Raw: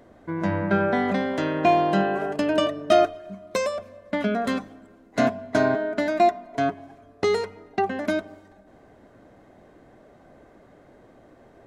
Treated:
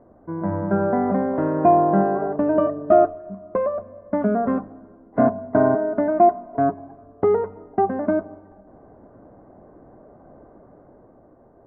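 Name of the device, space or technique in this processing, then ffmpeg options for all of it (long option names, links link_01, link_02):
action camera in a waterproof case: -af "lowpass=frequency=1200:width=0.5412,lowpass=frequency=1200:width=1.3066,dynaudnorm=framelen=160:gausssize=11:maxgain=4.5dB" -ar 44100 -c:a aac -b:a 64k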